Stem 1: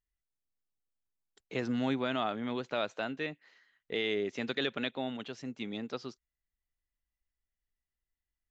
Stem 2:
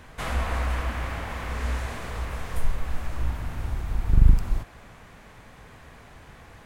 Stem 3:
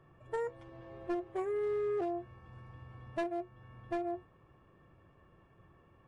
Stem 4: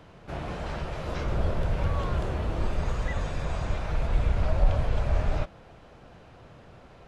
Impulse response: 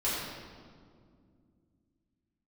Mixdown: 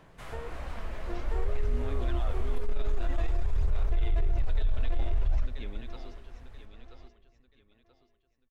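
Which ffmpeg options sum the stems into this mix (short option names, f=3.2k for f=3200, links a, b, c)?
-filter_complex "[0:a]volume=-11.5dB,asplit=3[a][b][c];[b]volume=-18dB[d];[c]volume=-7dB[e];[1:a]volume=-15dB,asplit=2[f][g];[g]volume=-19dB[h];[2:a]volume=-3.5dB,asplit=2[i][j];[j]volume=-4dB[k];[3:a]volume=-12dB,asplit=2[l][m];[m]volume=-23.5dB[n];[a][l]amix=inputs=2:normalize=0,aphaser=in_gain=1:out_gain=1:delay=4.7:decay=0.52:speed=0.53:type=sinusoidal,alimiter=level_in=6dB:limit=-24dB:level=0:latency=1:release=38,volume=-6dB,volume=0dB[o];[f][i]amix=inputs=2:normalize=0,acompressor=threshold=-39dB:ratio=2.5,volume=0dB[p];[4:a]atrim=start_sample=2205[q];[d][h][n]amix=inputs=3:normalize=0[r];[r][q]afir=irnorm=-1:irlink=0[s];[e][k]amix=inputs=2:normalize=0,aecho=0:1:982|1964|2946|3928|4910:1|0.33|0.109|0.0359|0.0119[t];[o][p][s][t]amix=inputs=4:normalize=0,asubboost=boost=10.5:cutoff=55,alimiter=limit=-19.5dB:level=0:latency=1:release=10"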